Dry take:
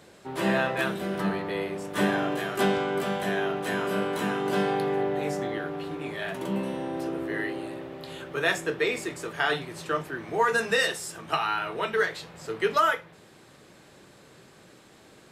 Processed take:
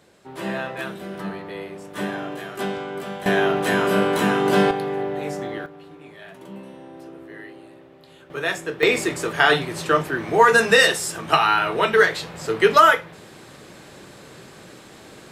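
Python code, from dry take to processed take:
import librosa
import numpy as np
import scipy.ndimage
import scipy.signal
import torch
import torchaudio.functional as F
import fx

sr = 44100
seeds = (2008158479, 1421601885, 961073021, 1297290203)

y = fx.gain(x, sr, db=fx.steps((0.0, -3.0), (3.26, 8.5), (4.71, 1.0), (5.66, -9.0), (8.3, 0.5), (8.83, 9.5)))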